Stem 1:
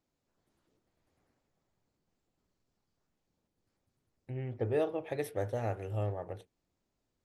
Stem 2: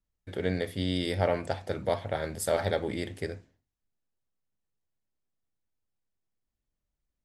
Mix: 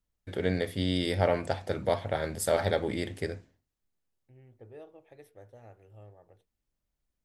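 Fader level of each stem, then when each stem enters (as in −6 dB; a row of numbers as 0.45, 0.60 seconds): −17.5, +1.0 decibels; 0.00, 0.00 seconds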